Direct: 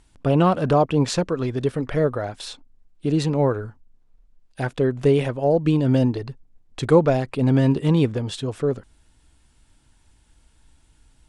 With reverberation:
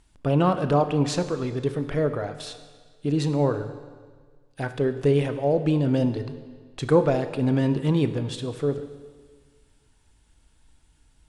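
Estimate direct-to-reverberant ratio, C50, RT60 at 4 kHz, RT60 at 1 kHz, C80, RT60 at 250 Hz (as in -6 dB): 9.5 dB, 11.5 dB, 1.5 s, 1.6 s, 12.5 dB, 1.6 s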